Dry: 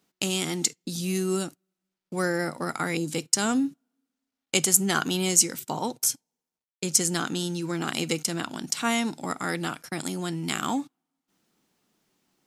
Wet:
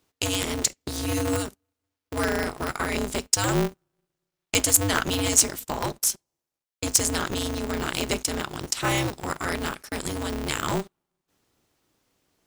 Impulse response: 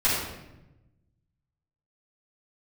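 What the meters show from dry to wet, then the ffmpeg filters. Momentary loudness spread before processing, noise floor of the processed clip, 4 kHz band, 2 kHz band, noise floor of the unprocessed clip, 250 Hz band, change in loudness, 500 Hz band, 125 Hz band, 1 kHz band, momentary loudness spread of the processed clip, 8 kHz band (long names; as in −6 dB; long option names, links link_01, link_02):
11 LU, below −85 dBFS, +1.5 dB, +1.5 dB, below −85 dBFS, −1.5 dB, +1.0 dB, +2.0 dB, +2.5 dB, +1.5 dB, 11 LU, +1.0 dB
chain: -af "aeval=exprs='val(0)*sgn(sin(2*PI*100*n/s))':channel_layout=same,volume=1dB"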